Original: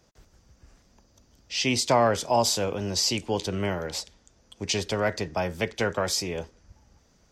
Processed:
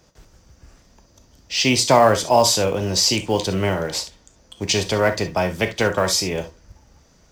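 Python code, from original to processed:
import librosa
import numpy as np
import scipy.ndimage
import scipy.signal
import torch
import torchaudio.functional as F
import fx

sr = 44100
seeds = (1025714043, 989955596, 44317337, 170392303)

p1 = fx.quant_float(x, sr, bits=2)
p2 = x + (p1 * librosa.db_to_amplitude(-7.0))
p3 = fx.rev_gated(p2, sr, seeds[0], gate_ms=90, shape='flat', drr_db=8.0)
y = p3 * librosa.db_to_amplitude(3.5)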